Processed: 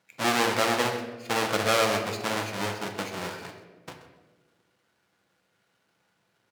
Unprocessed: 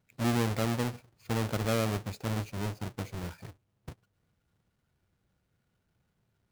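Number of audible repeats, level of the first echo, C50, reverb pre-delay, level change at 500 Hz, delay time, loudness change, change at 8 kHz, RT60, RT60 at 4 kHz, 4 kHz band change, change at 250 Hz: 1, -15.0 dB, 6.5 dB, 4 ms, +7.5 dB, 0.13 s, +6.0 dB, +9.0 dB, 1.4 s, 0.75 s, +11.5 dB, 0.0 dB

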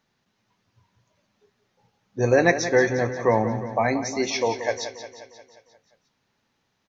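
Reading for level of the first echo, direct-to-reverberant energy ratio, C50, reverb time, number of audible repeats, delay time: -11.0 dB, none, none, none, 6, 0.177 s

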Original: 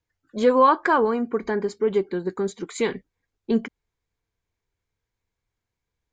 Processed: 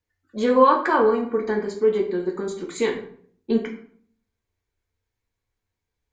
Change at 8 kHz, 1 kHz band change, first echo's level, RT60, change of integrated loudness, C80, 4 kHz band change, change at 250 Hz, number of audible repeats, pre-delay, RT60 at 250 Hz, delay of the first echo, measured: -0.5 dB, 0.0 dB, none, 0.55 s, +1.0 dB, 11.5 dB, +0.5 dB, +0.5 dB, none, 3 ms, 0.70 s, none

